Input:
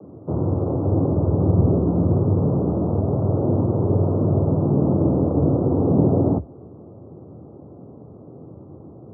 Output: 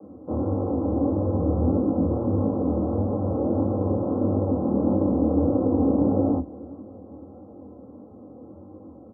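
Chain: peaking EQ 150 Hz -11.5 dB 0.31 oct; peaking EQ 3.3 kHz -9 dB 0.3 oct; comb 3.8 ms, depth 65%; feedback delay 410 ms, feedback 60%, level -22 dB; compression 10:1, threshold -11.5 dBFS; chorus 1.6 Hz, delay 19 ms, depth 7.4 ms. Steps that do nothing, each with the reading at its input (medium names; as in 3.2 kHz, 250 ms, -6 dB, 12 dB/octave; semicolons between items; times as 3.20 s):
peaking EQ 3.3 kHz: input has nothing above 850 Hz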